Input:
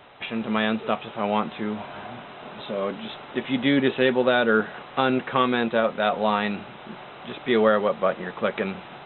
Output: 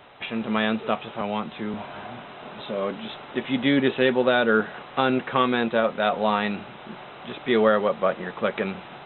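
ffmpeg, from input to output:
ffmpeg -i in.wav -filter_complex "[0:a]asettb=1/sr,asplit=3[link_01][link_02][link_03];[link_01]atrim=end=1.214[link_04];[link_02]atrim=start=1.21:end=1.74,asetpts=PTS-STARTPTS,afade=type=in:duration=0.004:curve=qsin,afade=type=out:start_time=0.526:duration=0.004:curve=qsin,acrossover=split=180|3000[link_05][link_06][link_07];[link_06]acompressor=threshold=-33dB:ratio=1.5[link_08];[link_05][link_08][link_07]amix=inputs=3:normalize=0[link_09];[link_03]atrim=start=1.736[link_10];[link_04][link_09]acrossfade=duration=0.004:curve1=hsin:curve2=qsin[link_11];[link_11][link_10]acrossfade=duration=0.004:curve1=qsin:curve2=hsin" out.wav

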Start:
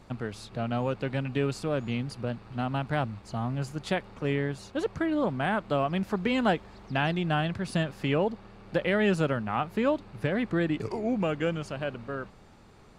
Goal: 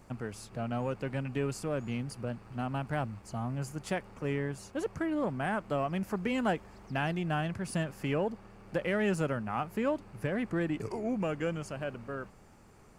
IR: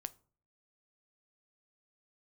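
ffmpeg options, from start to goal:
-filter_complex "[0:a]highshelf=frequency=6300:gain=9.5,asplit=2[link_01][link_02];[link_02]asoftclip=type=tanh:threshold=-29dB,volume=-8.5dB[link_03];[link_01][link_03]amix=inputs=2:normalize=0,equalizer=frequency=3800:width_type=o:width=0.53:gain=-11,volume=-6dB"

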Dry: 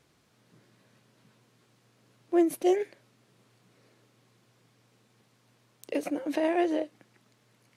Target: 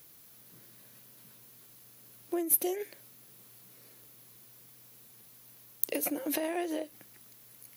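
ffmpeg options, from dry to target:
ffmpeg -i in.wav -af "acompressor=threshold=-30dB:ratio=10,aemphasis=mode=production:type=75kf,aexciter=amount=3:drive=8.3:freq=11000" out.wav

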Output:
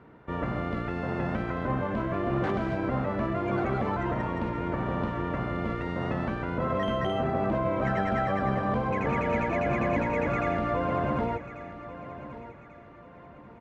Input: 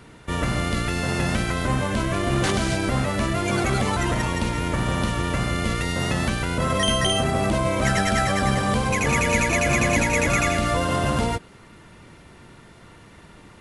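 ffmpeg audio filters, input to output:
ffmpeg -i in.wav -filter_complex "[0:a]lowpass=1300,lowshelf=frequency=110:gain=-11,asplit=2[link_01][link_02];[link_02]aecho=0:1:1140|2280|3420:0.2|0.0678|0.0231[link_03];[link_01][link_03]amix=inputs=2:normalize=0,volume=-3dB" out.wav

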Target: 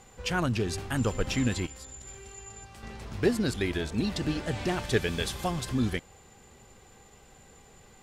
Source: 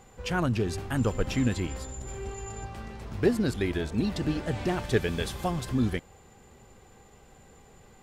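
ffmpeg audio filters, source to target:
ffmpeg -i in.wav -filter_complex "[0:a]aemphasis=mode=reproduction:type=50fm,asettb=1/sr,asplit=3[link_01][link_02][link_03];[link_01]atrim=end=1.664[link_04];[link_02]atrim=start=1.66:end=2.83,asetpts=PTS-STARTPTS,afade=type=in:duration=0.004:curve=qsin,afade=type=out:start_time=1.166:duration=0.004:curve=qsin,acrossover=split=1300|5900[link_05][link_06][link_07];[link_05]acompressor=threshold=-46dB:ratio=4[link_08];[link_06]acompressor=threshold=-58dB:ratio=4[link_09];[link_07]acompressor=threshold=-60dB:ratio=4[link_10];[link_08][link_09][link_10]amix=inputs=3:normalize=0[link_11];[link_03]atrim=start=2.826[link_12];[link_04][link_11]acrossfade=duration=0.004:curve1=hsin:curve2=qsin[link_13];[link_13][link_12]acrossfade=duration=0.004:curve1=qsin:curve2=hsin,crystalizer=i=4.5:c=0,volume=-2dB" out.wav

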